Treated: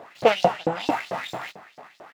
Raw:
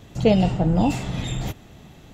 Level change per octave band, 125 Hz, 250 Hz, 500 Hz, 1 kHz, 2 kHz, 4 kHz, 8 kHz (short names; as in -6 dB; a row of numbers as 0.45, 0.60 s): -16.5, -11.5, +1.0, +5.0, +6.0, +1.5, -6.0 dB